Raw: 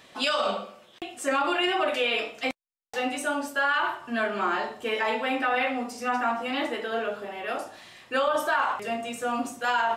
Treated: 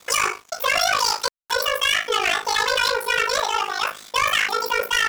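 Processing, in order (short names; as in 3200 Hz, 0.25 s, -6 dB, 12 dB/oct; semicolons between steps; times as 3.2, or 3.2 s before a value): wide varispeed 1.96×; sample leveller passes 3; ring modulator 26 Hz; gain +1 dB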